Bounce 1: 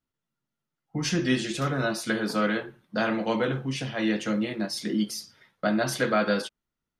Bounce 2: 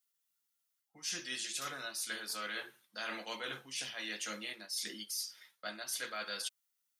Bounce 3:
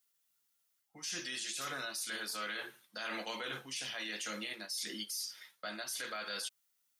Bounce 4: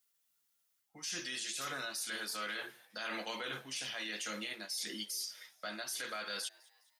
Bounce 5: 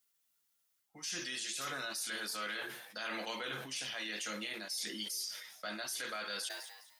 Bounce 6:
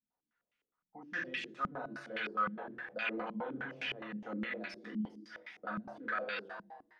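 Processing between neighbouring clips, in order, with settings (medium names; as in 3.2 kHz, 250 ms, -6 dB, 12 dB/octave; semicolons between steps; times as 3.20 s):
differentiator; reverse; compression 5:1, threshold -47 dBFS, peak gain reduction 15.5 dB; reverse; trim +9 dB
peak limiter -34.5 dBFS, peak gain reduction 8.5 dB; trim +4.5 dB
frequency-shifting echo 207 ms, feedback 46%, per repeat +140 Hz, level -24 dB
decay stretcher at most 53 dB/s
reverberation RT60 0.80 s, pre-delay 4 ms, DRR 3.5 dB; step-sequenced low-pass 9.7 Hz 200–2400 Hz; trim -2 dB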